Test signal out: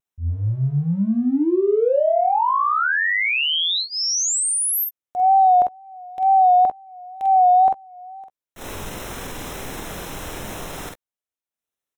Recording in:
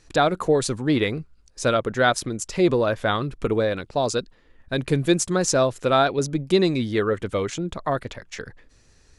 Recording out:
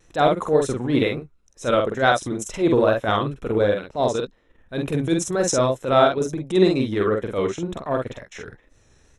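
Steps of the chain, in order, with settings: bell 530 Hz +4 dB 2.4 oct; transient shaper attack -11 dB, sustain -7 dB; early reflections 47 ms -3.5 dB, 62 ms -17 dB; vibrato 2.1 Hz 62 cents; Butterworth band-stop 4600 Hz, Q 5

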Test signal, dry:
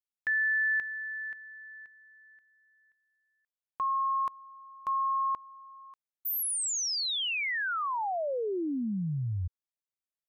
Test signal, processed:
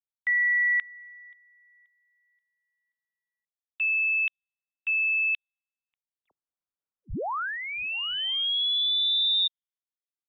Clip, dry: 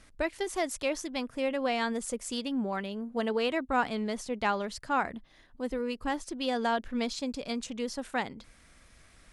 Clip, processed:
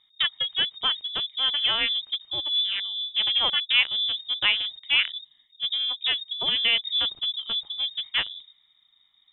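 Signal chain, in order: Wiener smoothing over 41 samples; inverted band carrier 3700 Hz; low-pass opened by the level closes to 1500 Hz, open at -29 dBFS; gain +7 dB

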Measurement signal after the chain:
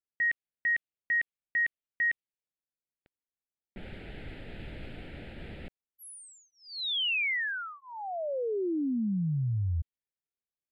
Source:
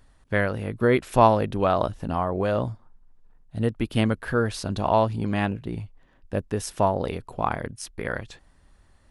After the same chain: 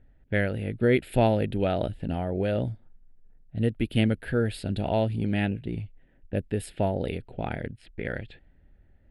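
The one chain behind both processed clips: fixed phaser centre 2600 Hz, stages 4; low-pass opened by the level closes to 1400 Hz, open at -24.5 dBFS

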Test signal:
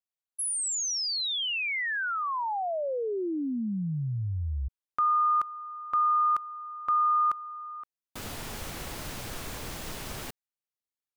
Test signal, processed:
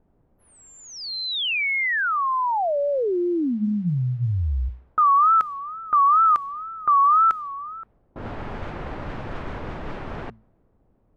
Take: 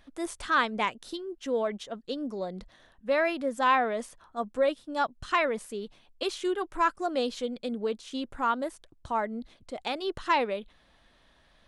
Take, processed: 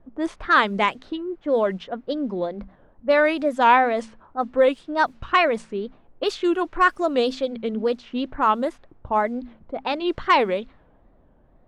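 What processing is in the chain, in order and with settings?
notches 60/120/180/240 Hz; added noise pink -68 dBFS; high shelf 6600 Hz -7.5 dB; wow and flutter 150 cents; low-pass opened by the level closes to 570 Hz, open at -25 dBFS; gain +8 dB

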